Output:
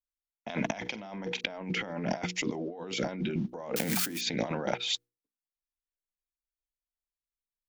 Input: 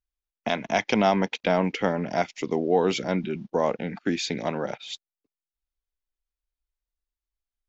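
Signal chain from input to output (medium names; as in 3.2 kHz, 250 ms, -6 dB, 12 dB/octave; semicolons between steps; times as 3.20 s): 3.76–4.21 s: zero-crossing glitches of -24 dBFS; band-stop 410 Hz, Q 12; gate with hold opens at -34 dBFS; hum notches 60/120/180/240/300/360/420/480 Hz; compressor with a negative ratio -35 dBFS, ratio -1; 0.80–1.41 s: flutter echo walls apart 7.8 m, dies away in 0.22 s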